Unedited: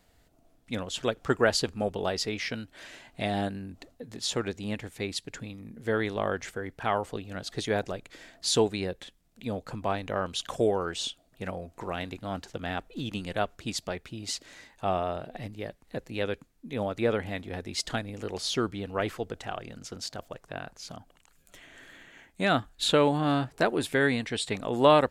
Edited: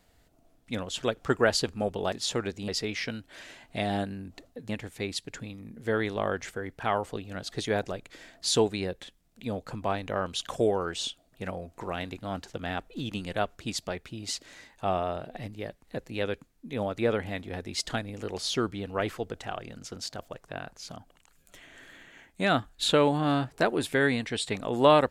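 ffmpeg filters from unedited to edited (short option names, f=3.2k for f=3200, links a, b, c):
-filter_complex "[0:a]asplit=4[a][b][c][d];[a]atrim=end=2.122[e];[b]atrim=start=4.128:end=4.692[f];[c]atrim=start=2.118:end=4.132[g];[d]atrim=start=4.688[h];[e][f]acrossfade=d=0.004:c1=hsin:c2=hsin[i];[i][g]acrossfade=d=0.004:c1=hsin:c2=hsin[j];[j][h]acrossfade=d=0.004:c1=hsin:c2=hsin"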